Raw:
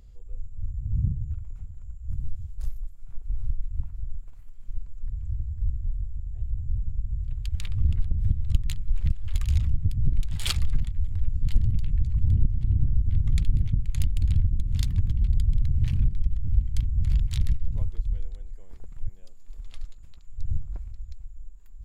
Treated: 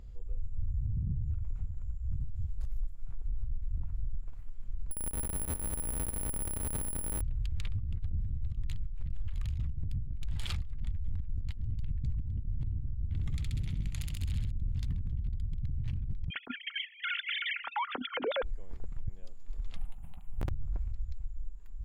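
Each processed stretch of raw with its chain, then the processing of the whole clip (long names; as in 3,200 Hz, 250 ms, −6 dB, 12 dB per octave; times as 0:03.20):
0:04.91–0:07.21: comparator with hysteresis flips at −35 dBFS + repeating echo 199 ms, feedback 38%, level −13 dB + bad sample-rate conversion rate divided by 4×, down none, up zero stuff
0:13.13–0:14.51: spectral tilt +2.5 dB per octave + flutter between parallel walls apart 11.2 metres, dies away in 0.75 s
0:16.30–0:18.43: three sine waves on the formant tracks + hollow resonant body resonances 250/1,400 Hz, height 11 dB, ringing for 60 ms
0:19.76–0:20.49: drawn EQ curve 110 Hz 0 dB, 190 Hz +9 dB, 290 Hz −2 dB, 490 Hz −6 dB, 780 Hz +14 dB, 1,100 Hz +3 dB, 1,700 Hz −1 dB, 2,900 Hz +3 dB, 5,700 Hz −25 dB, 9,100 Hz +14 dB + wrap-around overflow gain 19 dB
whole clip: high-shelf EQ 4,100 Hz −10 dB; compressor whose output falls as the input rises −27 dBFS, ratio −1; brickwall limiter −23.5 dBFS; level −2 dB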